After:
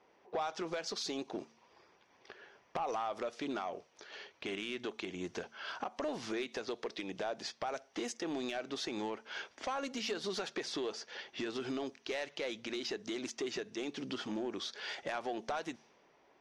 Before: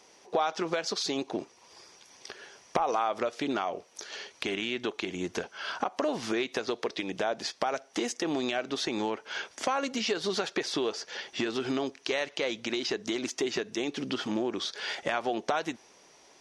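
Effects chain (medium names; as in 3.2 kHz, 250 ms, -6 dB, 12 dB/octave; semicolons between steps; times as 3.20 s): saturation -21.5 dBFS, distortion -16 dB; de-hum 75.59 Hz, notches 3; level-controlled noise filter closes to 1.9 kHz, open at -28 dBFS; trim -6.5 dB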